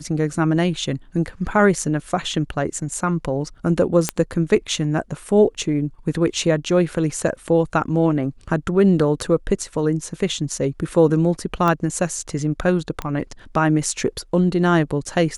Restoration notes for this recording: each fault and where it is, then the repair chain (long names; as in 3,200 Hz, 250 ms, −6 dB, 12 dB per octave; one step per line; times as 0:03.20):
0:04.09: click −3 dBFS
0:11.68: click −9 dBFS
0:13.02: click −13 dBFS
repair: click removal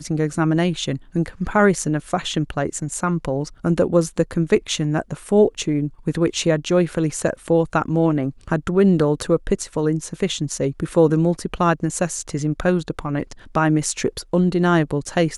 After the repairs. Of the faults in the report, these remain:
none of them is left